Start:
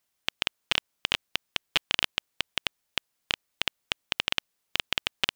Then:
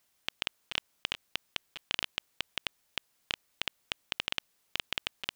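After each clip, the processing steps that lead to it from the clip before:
compressor whose output falls as the input rises −31 dBFS, ratio −0.5
level −1 dB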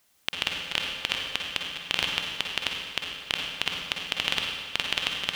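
convolution reverb RT60 1.8 s, pre-delay 46 ms, DRR 0.5 dB
level +6 dB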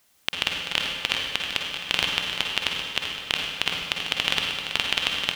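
repeating echo 387 ms, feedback 54%, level −10 dB
level +3 dB

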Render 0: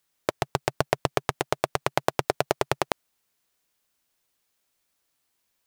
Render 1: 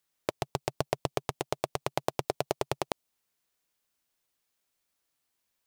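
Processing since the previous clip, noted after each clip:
dynamic equaliser 1,600 Hz, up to −7 dB, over −46 dBFS, Q 1.4
level −5 dB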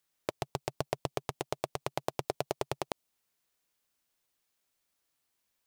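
brickwall limiter −12.5 dBFS, peak gain reduction 4 dB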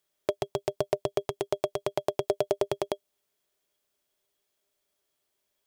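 hollow resonant body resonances 400/600/3,300 Hz, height 14 dB, ringing for 75 ms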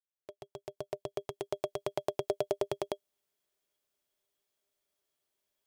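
fade in at the beginning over 1.84 s
level −5 dB

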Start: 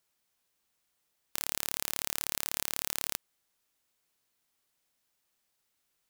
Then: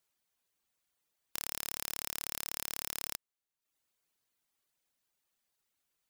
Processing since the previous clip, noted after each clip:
notch filter 5,300 Hz, Q 29
reverb reduction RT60 0.68 s
level −3 dB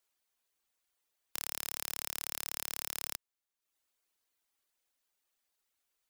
parametric band 140 Hz −14 dB 1 octave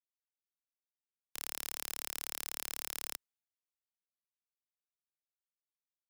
multiband upward and downward expander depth 70%
level −2 dB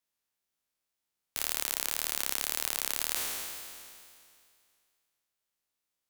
peak hold with a decay on every bin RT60 2.35 s
tape wow and flutter 130 cents
level +6.5 dB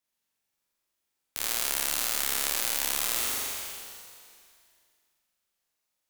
flutter between parallel walls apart 7.3 metres, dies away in 1.2 s

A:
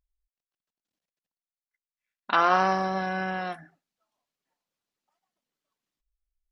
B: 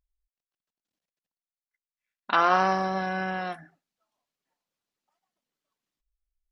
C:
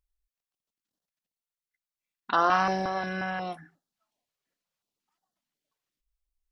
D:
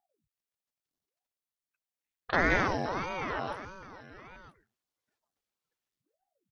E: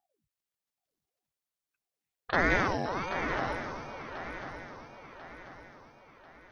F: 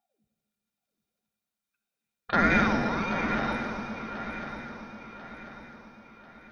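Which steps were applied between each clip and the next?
no processing that can be heard
notch on a step sequencer 5.6 Hz 230–2,300 Hz
single-tap delay 970 ms −15 dB; ring modulator whose carrier an LFO sweeps 410 Hz, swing 90%, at 1.6 Hz
feedback echo with a long and a short gap by turns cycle 1,042 ms, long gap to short 3 to 1, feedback 44%, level −10 dB
hollow resonant body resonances 210/1,400/2,400/3,700 Hz, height 15 dB, ringing for 95 ms; on a send at −6 dB: convolution reverb RT60 2.1 s, pre-delay 40 ms

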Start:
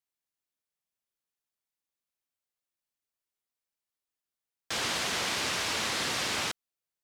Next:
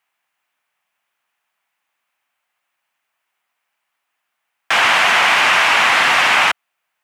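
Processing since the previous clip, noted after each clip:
high-pass filter 120 Hz 12 dB per octave
flat-topped bell 1,400 Hz +14.5 dB 2.5 octaves
in parallel at +0.5 dB: brickwall limiter −18 dBFS, peak gain reduction 10 dB
on the sum: level +3.5 dB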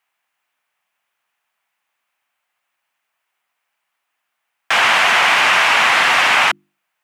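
mains-hum notches 50/100/150/200/250/300/350 Hz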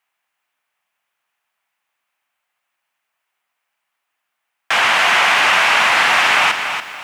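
feedback echo at a low word length 286 ms, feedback 35%, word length 7 bits, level −7.5 dB
level −1 dB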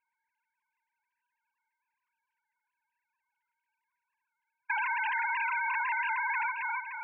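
three sine waves on the formant tracks
low-pass filter 2,800 Hz
downward compressor 4 to 1, threshold −22 dBFS, peak gain reduction 10 dB
level −8 dB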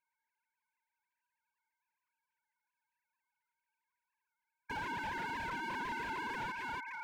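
slew-rate limiting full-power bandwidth 26 Hz
level −4.5 dB

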